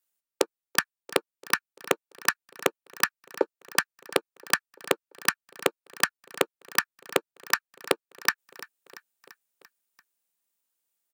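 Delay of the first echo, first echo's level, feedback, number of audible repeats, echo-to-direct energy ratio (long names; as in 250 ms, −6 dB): 341 ms, −19.0 dB, 60%, 4, −17.0 dB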